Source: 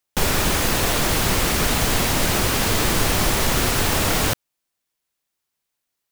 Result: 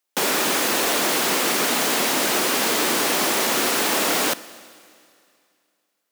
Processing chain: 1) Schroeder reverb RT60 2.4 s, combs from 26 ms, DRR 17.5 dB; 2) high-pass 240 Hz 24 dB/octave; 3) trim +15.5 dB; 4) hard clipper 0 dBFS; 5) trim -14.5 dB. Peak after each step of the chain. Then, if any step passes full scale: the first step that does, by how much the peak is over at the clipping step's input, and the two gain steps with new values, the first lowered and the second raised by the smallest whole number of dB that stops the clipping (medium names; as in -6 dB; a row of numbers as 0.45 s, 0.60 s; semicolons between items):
-6.0 dBFS, -8.0 dBFS, +7.5 dBFS, 0.0 dBFS, -14.5 dBFS; step 3, 7.5 dB; step 3 +7.5 dB, step 5 -6.5 dB